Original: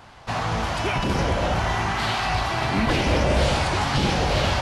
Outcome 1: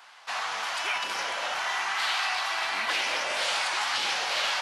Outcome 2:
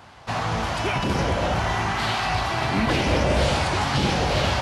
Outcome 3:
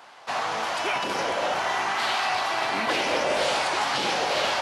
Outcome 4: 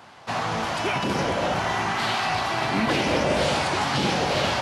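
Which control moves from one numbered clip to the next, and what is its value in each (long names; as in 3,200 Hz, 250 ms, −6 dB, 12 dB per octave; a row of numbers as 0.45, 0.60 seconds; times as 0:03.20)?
high-pass filter, corner frequency: 1,200, 53, 460, 160 Hertz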